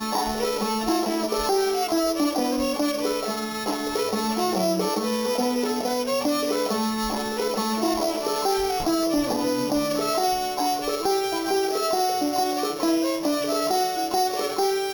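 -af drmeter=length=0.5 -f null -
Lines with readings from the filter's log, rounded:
Channel 1: DR: 7.0
Overall DR: 7.0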